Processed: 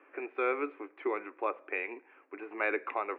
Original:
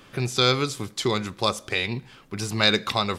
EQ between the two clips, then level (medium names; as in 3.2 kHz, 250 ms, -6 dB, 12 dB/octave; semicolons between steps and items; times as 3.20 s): Chebyshev band-pass 290–2500 Hz, order 5; distance through air 72 m; -6.5 dB